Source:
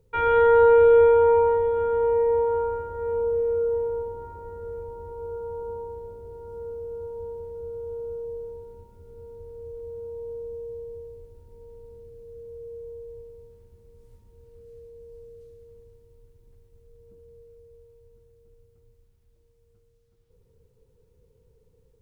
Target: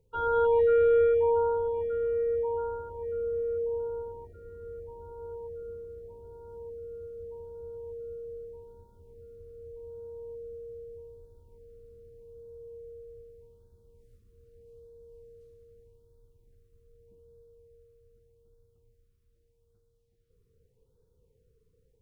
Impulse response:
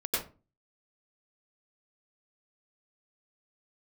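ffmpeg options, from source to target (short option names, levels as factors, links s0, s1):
-af "afftfilt=real='re*(1-between(b*sr/1024,680*pow(2400/680,0.5+0.5*sin(2*PI*0.82*pts/sr))/1.41,680*pow(2400/680,0.5+0.5*sin(2*PI*0.82*pts/sr))*1.41))':imag='im*(1-between(b*sr/1024,680*pow(2400/680,0.5+0.5*sin(2*PI*0.82*pts/sr))/1.41,680*pow(2400/680,0.5+0.5*sin(2*PI*0.82*pts/sr))*1.41))':win_size=1024:overlap=0.75,volume=0.473"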